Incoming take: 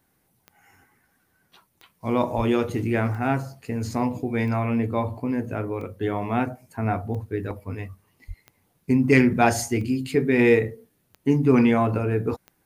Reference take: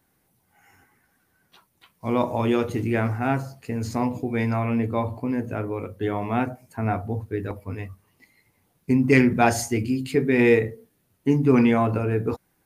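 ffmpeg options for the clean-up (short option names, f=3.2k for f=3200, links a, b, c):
-filter_complex "[0:a]adeclick=t=4,asplit=3[a][b][c];[a]afade=t=out:st=2.36:d=0.02[d];[b]highpass=f=140:w=0.5412,highpass=f=140:w=1.3066,afade=t=in:st=2.36:d=0.02,afade=t=out:st=2.48:d=0.02[e];[c]afade=t=in:st=2.48:d=0.02[f];[d][e][f]amix=inputs=3:normalize=0,asplit=3[g][h][i];[g]afade=t=out:st=8.27:d=0.02[j];[h]highpass=f=140:w=0.5412,highpass=f=140:w=1.3066,afade=t=in:st=8.27:d=0.02,afade=t=out:st=8.39:d=0.02[k];[i]afade=t=in:st=8.39:d=0.02[l];[j][k][l]amix=inputs=3:normalize=0"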